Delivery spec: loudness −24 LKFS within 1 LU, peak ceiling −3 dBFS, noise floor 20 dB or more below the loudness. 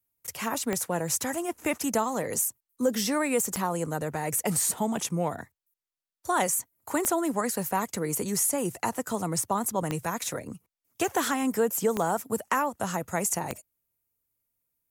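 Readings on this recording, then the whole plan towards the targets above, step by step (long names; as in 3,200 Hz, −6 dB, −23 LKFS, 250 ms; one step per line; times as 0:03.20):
number of clicks 6; integrated loudness −28.5 LKFS; sample peak −13.0 dBFS; target loudness −24.0 LKFS
→ click removal
level +4.5 dB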